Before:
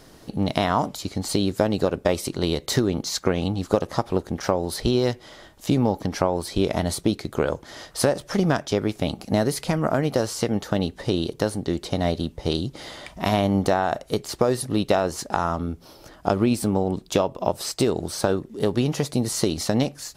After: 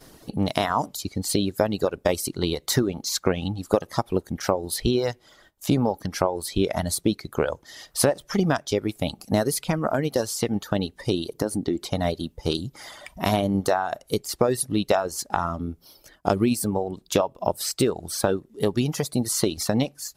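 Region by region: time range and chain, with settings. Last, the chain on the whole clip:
11.35–11.86 bell 300 Hz +8.5 dB 1.4 oct + compressor 3:1, threshold -19 dBFS
whole clip: reverb removal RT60 1.7 s; gate -55 dBFS, range -12 dB; bell 13000 Hz +7 dB 0.98 oct

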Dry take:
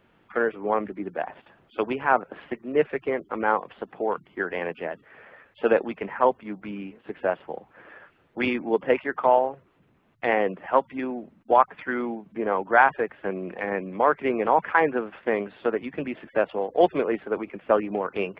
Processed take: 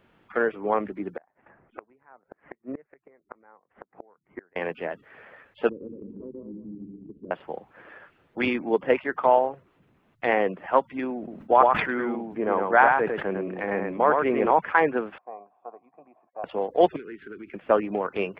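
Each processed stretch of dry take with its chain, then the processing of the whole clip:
1.17–4.56 Chebyshev low-pass 2100 Hz, order 4 + flipped gate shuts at -24 dBFS, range -32 dB
5.69–7.31 regenerating reverse delay 0.106 s, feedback 44%, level -1.5 dB + inverse Chebyshev low-pass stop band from 700 Hz + compressor 2:1, threshold -40 dBFS
11.17–14.51 high shelf 2900 Hz -6 dB + echo 0.104 s -4.5 dB + sustainer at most 65 dB/s
15.18–16.44 vocal tract filter a + low shelf 74 Hz -11 dB
16.96–17.54 Chebyshev band-stop 390–1500 Hz, order 3 + bell 1500 Hz +3.5 dB 0.2 oct + compressor, threshold -36 dBFS
whole clip: dry

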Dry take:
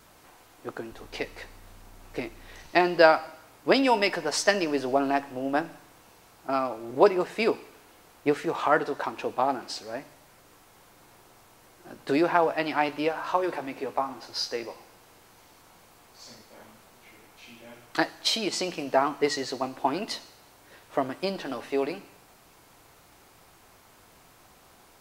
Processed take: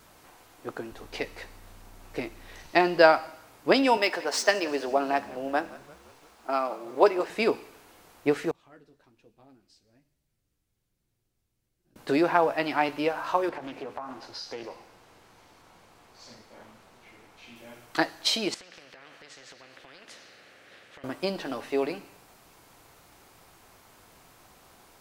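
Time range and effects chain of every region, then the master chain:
3.97–7.3 median filter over 3 samples + HPF 340 Hz + frequency-shifting echo 0.172 s, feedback 59%, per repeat -69 Hz, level -20 dB
8.51–11.96 passive tone stack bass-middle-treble 10-0-1 + flange 1.2 Hz, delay 4.5 ms, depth 8.7 ms, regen -42%
13.49–17.56 compressor 4:1, threshold -33 dBFS + high shelf 8000 Hz -10.5 dB + Doppler distortion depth 0.29 ms
18.54–21.04 double band-pass 960 Hz, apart 1.7 oct + compressor 2.5:1, threshold -48 dBFS + spectral compressor 4:1
whole clip: dry

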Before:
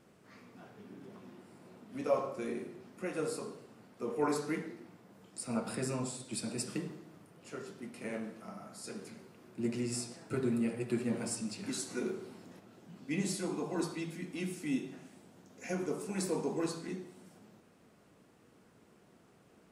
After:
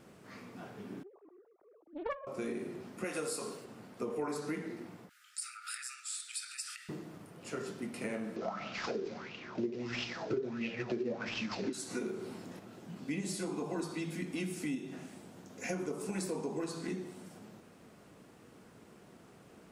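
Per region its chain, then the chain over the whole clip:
1.03–2.27 sine-wave speech + low-pass opened by the level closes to 880 Hz, open at -29 dBFS + Doppler distortion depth 0.97 ms
3.04–3.65 HPF 49 Hz + tilt +2 dB/oct + mismatched tape noise reduction decoder only
5.09–6.89 compressor 4:1, threshold -38 dBFS + brick-wall FIR high-pass 1200 Hz
8.36–11.73 CVSD 32 kbps + LFO bell 1.5 Hz 370–2900 Hz +18 dB
whole clip: compressor, threshold -40 dBFS; ending taper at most 240 dB/s; gain +6 dB

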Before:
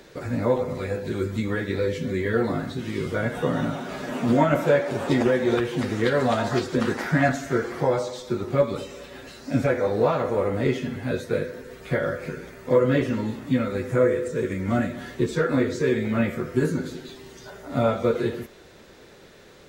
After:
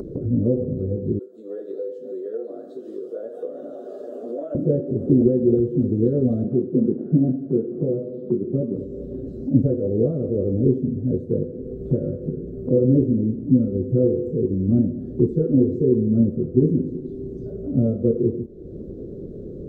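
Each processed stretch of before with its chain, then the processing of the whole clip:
1.19–4.55 HPF 600 Hz 24 dB/oct + notch 5800 Hz, Q 18
6.44–8.76 delta modulation 32 kbps, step -37 dBFS + HPF 140 Hz 24 dB/oct + air absorption 340 m
whole clip: inverse Chebyshev low-pass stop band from 840 Hz, stop band 40 dB; upward compressor, threshold -28 dBFS; ending taper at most 420 dB/s; gain +6.5 dB

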